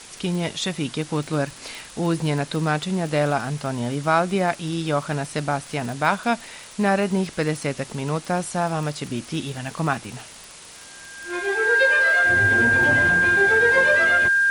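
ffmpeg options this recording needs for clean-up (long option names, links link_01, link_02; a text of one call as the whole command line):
ffmpeg -i in.wav -af "adeclick=threshold=4,bandreject=frequency=1600:width=30,afwtdn=0.01" out.wav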